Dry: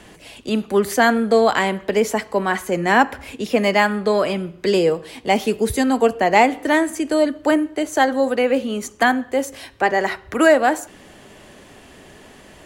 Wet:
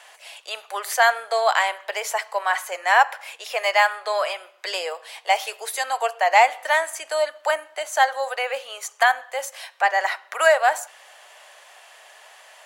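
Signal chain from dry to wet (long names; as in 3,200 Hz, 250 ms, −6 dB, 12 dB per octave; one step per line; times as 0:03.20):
Butterworth high-pass 630 Hz 36 dB per octave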